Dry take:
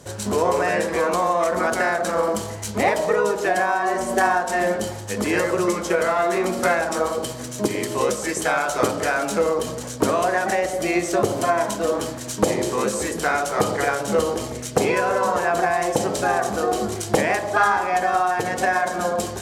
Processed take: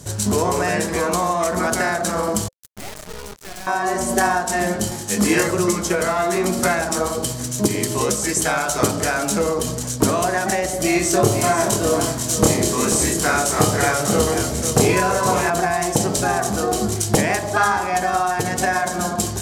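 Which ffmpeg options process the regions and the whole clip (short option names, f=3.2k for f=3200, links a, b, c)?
-filter_complex "[0:a]asettb=1/sr,asplit=3[a][b][c];[a]atrim=end=2.484[d];[b]atrim=start=2.48:end=3.67,asetpts=PTS-STARTPTS,afade=t=in:d=0.004:c=qsin,afade=t=out:st=1.186:d=0.004:c=qsin,acrusher=bits=2:mix=0:aa=0.5,aeval=exprs='(tanh(39.8*val(0)+0.65)-tanh(0.65))/39.8':c=same[e];[c]atrim=start=3.666[f];[d][e]acrossfade=d=0.004:c1=hsin:c2=qsin[g];[g][f]acrossfade=d=0.004:c1=qsin:c2=hsin,asettb=1/sr,asplit=3[h][i][j];[h]atrim=end=4.894[k];[i]atrim=start=4.89:end=5.48,asetpts=PTS-STARTPTS,afade=t=in:d=0.004:c=qsin,afade=t=out:st=0.586:d=0.004:c=qsin,equalizer=f=94:t=o:w=0.5:g=-8.5,asplit=2[l][m];[m]adelay=25,volume=-2dB[n];[l][n]amix=inputs=2:normalize=0,atrim=end_sample=26019[o];[j]atrim=start=5.476[p];[k][o]acrossfade=d=0.004:c1=hsin:c2=qsin[q];[q][p]acrossfade=d=0.004:c1=qsin:c2=hsin,asettb=1/sr,asplit=3[r][s][t];[r]atrim=end=10.814[u];[s]atrim=start=10.81:end=15.5,asetpts=PTS-STARTPTS,afade=t=in:d=0.004:c=qsin,afade=t=out:st=4.686:d=0.004:c=qsin,asplit=2[v][w];[w]adelay=27,volume=-2.5dB[x];[v][x]amix=inputs=2:normalize=0,atrim=end_sample=206829,aecho=1:1:492:0.355,atrim=end_sample=206829[y];[t]atrim=start=15.496[z];[u][y]acrossfade=d=0.004:c1=hsin:c2=qsin[aa];[aa][z]acrossfade=d=0.004:c1=qsin:c2=hsin,bass=f=250:g=9,treble=f=4k:g=9,bandreject=f=520:w=12"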